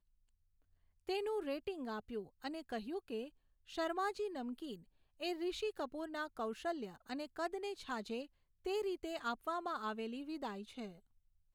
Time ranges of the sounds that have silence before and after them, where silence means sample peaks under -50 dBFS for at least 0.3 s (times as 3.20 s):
1.09–3.28 s
3.69–4.76 s
5.20–8.25 s
8.65–10.96 s